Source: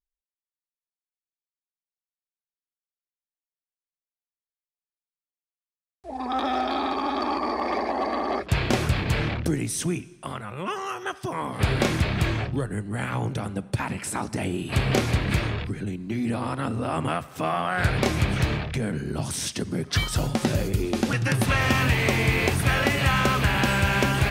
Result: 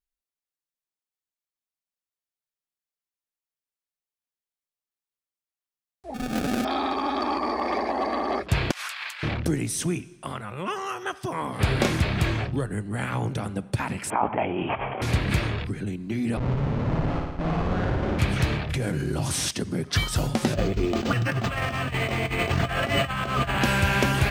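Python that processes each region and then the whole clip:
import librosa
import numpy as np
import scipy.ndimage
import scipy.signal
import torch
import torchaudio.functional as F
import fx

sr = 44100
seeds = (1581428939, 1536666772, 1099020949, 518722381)

y = fx.chain(x, sr, fx.sample_hold(seeds[0], rate_hz=1000.0, jitter_pct=0),
    fx.doppler_dist(depth_ms=0.25), at=(6.14, 6.65))
y = fx.chain(y, sr, fx.highpass(hz=1100.0, slope=24),
    fx.over_compress(threshold_db=-35.0, ratio=-0.5), at=(8.71, 9.23))
y = fx.chain(y, sr, fx.cheby_ripple(hz=3300.0, ripple_db=6),
    fx.over_compress(threshold_db=-35.0, ratio=-1.0),
    fx.peak_eq(hz=840.0, db=14.0, octaves=2.2), at=(14.1, 15.02))
y = fx.chain(y, sr, fx.schmitt(flips_db=-26.0),
    fx.spacing_loss(db_at_10k=33),
    fx.room_flutter(wall_m=9.6, rt60_s=1.1), at=(16.37, 18.19))
y = fx.chain(y, sr, fx.cvsd(bps=64000),
    fx.notch_comb(f0_hz=220.0),
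    fx.env_flatten(amount_pct=70), at=(18.69, 19.51))
y = fx.chain(y, sr, fx.over_compress(threshold_db=-25.0, ratio=-0.5),
    fx.small_body(hz=(680.0, 1200.0, 3000.0), ring_ms=95, db=14),
    fx.resample_linear(factor=4), at=(20.54, 23.61))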